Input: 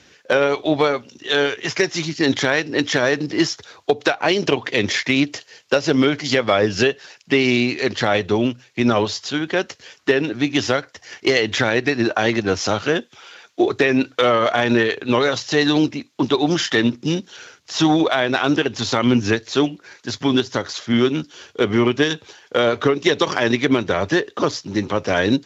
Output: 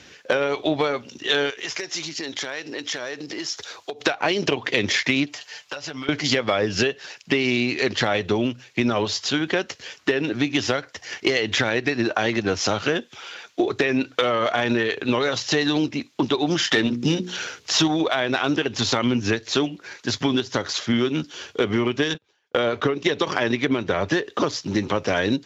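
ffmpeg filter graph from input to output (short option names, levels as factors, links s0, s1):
-filter_complex "[0:a]asettb=1/sr,asplit=3[s0][s1][s2];[s0]atrim=end=1.504[s3];[s1]atrim=start=1.5:end=4.01,asetpts=PTS-STARTPTS,afade=t=in:d=0.004:c=qsin,afade=t=out:st=2.506:d=0.004:c=qsin,acompressor=threshold=0.0282:ratio=5:attack=3.2:release=140:knee=1:detection=peak,bass=f=250:g=-10,treble=f=4000:g=5[s4];[s2]atrim=start=4.006[s5];[s3][s4]acrossfade=d=0.004:c1=hsin:c2=qsin[s6];[s6][s5]acrossfade=d=0.004:c1=qsin:c2=hsin,asettb=1/sr,asplit=3[s7][s8][s9];[s7]atrim=end=5.264[s10];[s8]atrim=start=5.26:end=6.09,asetpts=PTS-STARTPTS,afade=t=in:d=0.004:c=qsin,afade=t=out:st=0.826:d=0.004:c=qsin,lowshelf=f=570:t=q:w=1.5:g=-7.5,aecho=1:1:6.8:0.69,atrim=end_sample=36603,acompressor=threshold=0.0251:ratio=10:attack=3.2:release=140:knee=1:detection=peak[s11];[s9]atrim=start=6.086[s12];[s10][s11]acrossfade=d=0.004:c1=hsin:c2=qsin[s13];[s13][s12]acrossfade=d=0.004:c1=qsin:c2=hsin,asettb=1/sr,asplit=3[s14][s15][s16];[s14]atrim=end=16.724[s17];[s15]atrim=start=16.72:end=17.88,asetpts=PTS-STARTPTS,afade=t=in:d=0.004:c=qsin,afade=t=out:st=1.156:d=0.004:c=qsin,acontrast=33,bandreject=f=60:t=h:w=6,bandreject=f=120:t=h:w=6,bandreject=f=180:t=h:w=6,bandreject=f=240:t=h:w=6,bandreject=f=300:t=h:w=6,bandreject=f=360:t=h:w=6,bandreject=f=420:t=h:w=6,bandreject=f=480:t=h:w=6[s18];[s16]atrim=start=17.876[s19];[s17][s18]acrossfade=d=0.004:c1=hsin:c2=qsin[s20];[s20][s19]acrossfade=d=0.004:c1=qsin:c2=hsin,asettb=1/sr,asplit=3[s21][s22][s23];[s21]atrim=end=22.144[s24];[s22]atrim=start=22.14:end=24.11,asetpts=PTS-STARTPTS,afade=t=in:d=0.004:c=qsin,afade=t=out:st=1.966:d=0.004:c=qsin,agate=range=0.0501:threshold=0.0158:ratio=16:release=100:detection=peak,highshelf=f=4900:g=-6[s25];[s23]atrim=start=24.106[s26];[s24][s25]acrossfade=d=0.004:c1=hsin:c2=qsin[s27];[s27][s26]acrossfade=d=0.004:c1=qsin:c2=hsin,acompressor=threshold=0.0794:ratio=4,equalizer=f=2700:w=1.5:g=2,volume=1.41"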